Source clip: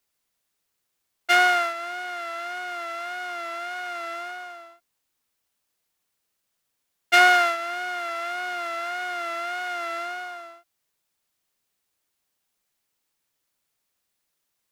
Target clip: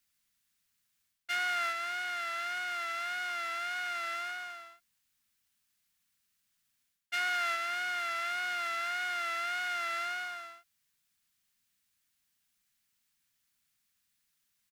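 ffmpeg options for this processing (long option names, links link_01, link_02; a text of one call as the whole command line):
ffmpeg -i in.wav -af "firequalizer=gain_entry='entry(240,0);entry(340,-15);entry(1600,0)':delay=0.05:min_phase=1,areverse,acompressor=threshold=-29dB:ratio=8,areverse" out.wav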